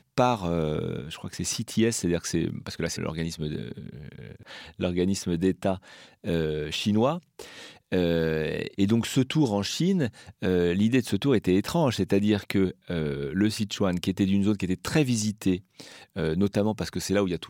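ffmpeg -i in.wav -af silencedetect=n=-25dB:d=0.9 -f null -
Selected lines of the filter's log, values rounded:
silence_start: 3.72
silence_end: 4.81 | silence_duration: 1.09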